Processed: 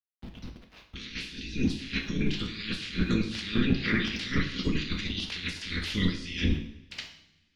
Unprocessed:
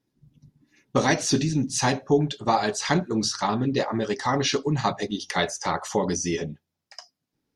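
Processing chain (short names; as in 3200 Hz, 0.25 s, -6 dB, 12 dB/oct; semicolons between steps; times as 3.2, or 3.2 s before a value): spectral limiter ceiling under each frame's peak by 26 dB; Chebyshev band-stop 190–3100 Hz, order 2; bell 130 Hz -12 dB 0.98 oct; bit-crush 10-bit; negative-ratio compressor -39 dBFS, ratio -1; sine folder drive 7 dB, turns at -14.5 dBFS; air absorption 360 m; two-slope reverb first 0.64 s, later 1.9 s, from -19 dB, DRR 2.5 dB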